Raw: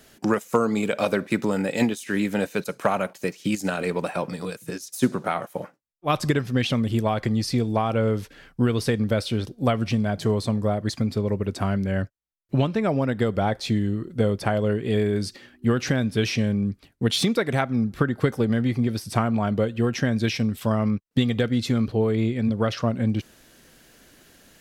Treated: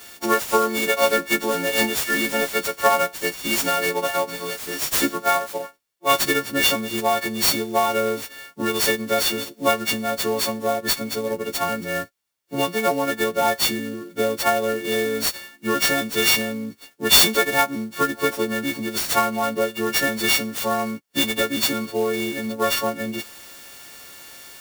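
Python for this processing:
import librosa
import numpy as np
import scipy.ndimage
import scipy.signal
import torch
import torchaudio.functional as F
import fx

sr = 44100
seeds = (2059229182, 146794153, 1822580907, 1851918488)

y = fx.freq_snap(x, sr, grid_st=4)
y = scipy.signal.sosfilt(scipy.signal.butter(2, 340.0, 'highpass', fs=sr, output='sos'), y)
y = fx.clock_jitter(y, sr, seeds[0], jitter_ms=0.032)
y = y * librosa.db_to_amplitude(3.0)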